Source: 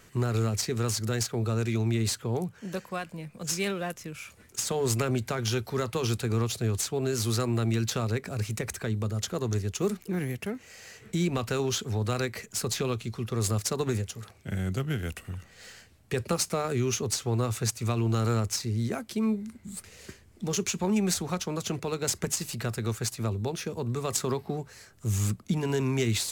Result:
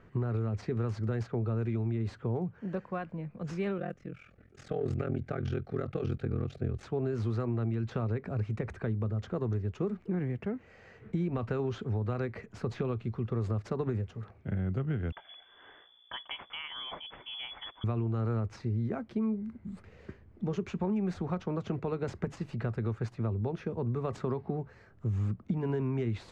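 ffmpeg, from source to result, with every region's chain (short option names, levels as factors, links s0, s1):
-filter_complex "[0:a]asettb=1/sr,asplit=3[s0][s1][s2];[s0]atrim=end=3.784[s3];[s1]atrim=start=3.78:end=6.83,asetpts=PTS-STARTPTS,afade=t=in:d=0.004:c=qsin,afade=t=out:st=3.046:d=0.004:c=qsin,asuperstop=centerf=970:order=4:qfactor=2.9,aeval=exprs='val(0)*sin(2*PI*21*n/s)':c=same[s4];[s2]atrim=start=6.826[s5];[s3][s4]acrossfade=d=0.004:c1=hsin:c2=qsin[s6];[s6][s5]acrossfade=d=0.004:c1=qsin:c2=hsin,asettb=1/sr,asplit=3[s7][s8][s9];[s7]atrim=end=15.124[s10];[s8]atrim=start=15.12:end=17.84,asetpts=PTS-STARTPTS,afade=t=in:d=0.004:c=qsin,afade=t=out:st=2.716:d=0.004:c=qsin,aeval=exprs='val(0)+0.00562*(sin(2*PI*60*n/s)+sin(2*PI*2*60*n/s)/2+sin(2*PI*3*60*n/s)/3+sin(2*PI*4*60*n/s)/4+sin(2*PI*5*60*n/s)/5)':c=same,lowpass=f=3000:t=q:w=0.5098,lowpass=f=3000:t=q:w=0.6013,lowpass=f=3000:t=q:w=0.9,lowpass=f=3000:t=q:w=2.563,afreqshift=-3500[s11];[s9]atrim=start=17.836[s12];[s10][s11]acrossfade=d=0.004:c1=hsin:c2=qsin[s13];[s13][s12]acrossfade=d=0.004:c1=qsin:c2=hsin,lowpass=1600,lowshelf=f=480:g=4,acompressor=threshold=0.0562:ratio=6,volume=0.75"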